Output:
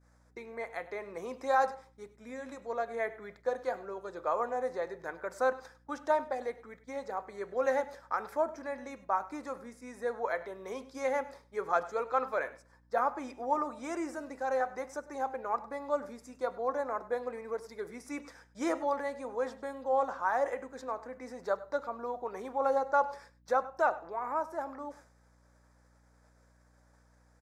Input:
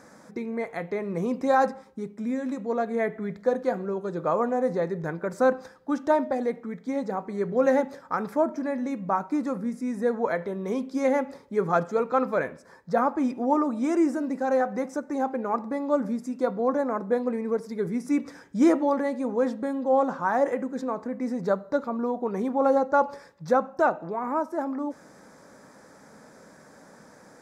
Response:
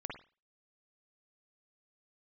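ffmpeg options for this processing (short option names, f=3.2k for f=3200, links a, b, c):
-af "highpass=580,agate=range=-33dB:threshold=-45dB:ratio=3:detection=peak,aecho=1:1:100:0.119,aeval=exprs='val(0)+0.001*(sin(2*PI*60*n/s)+sin(2*PI*2*60*n/s)/2+sin(2*PI*3*60*n/s)/3+sin(2*PI*4*60*n/s)/4+sin(2*PI*5*60*n/s)/5)':c=same,volume=-4dB"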